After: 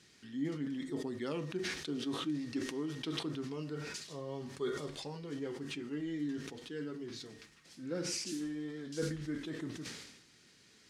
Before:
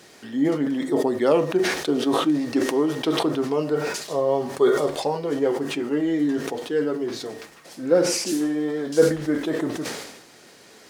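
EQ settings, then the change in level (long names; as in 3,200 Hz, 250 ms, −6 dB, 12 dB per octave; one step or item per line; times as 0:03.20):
high-frequency loss of the air 53 metres
guitar amp tone stack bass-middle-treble 6-0-2
+6.0 dB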